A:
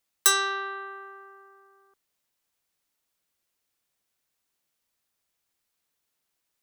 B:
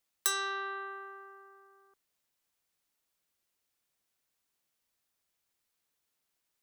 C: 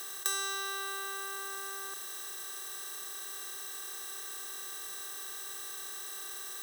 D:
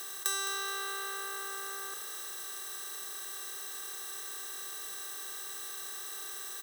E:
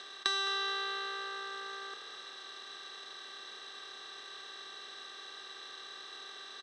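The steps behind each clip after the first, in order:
compressor 2:1, threshold -30 dBFS, peak gain reduction 8.5 dB; gain -2.5 dB
per-bin compression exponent 0.2; gain -4 dB
frequency-shifting echo 0.212 s, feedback 43%, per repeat +59 Hz, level -11 dB
power-law curve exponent 1.4; speaker cabinet 160–4600 Hz, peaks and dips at 170 Hz -9 dB, 240 Hz +3 dB, 3600 Hz +6 dB; gain +8 dB

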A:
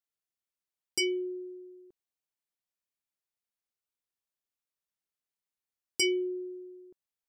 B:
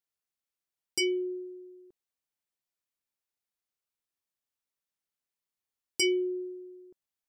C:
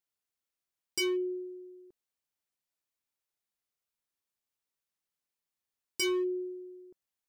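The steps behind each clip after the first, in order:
dynamic EQ 200 Hz, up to +4 dB, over -43 dBFS, Q 0.87
hard clip -27.5 dBFS, distortion -13 dB

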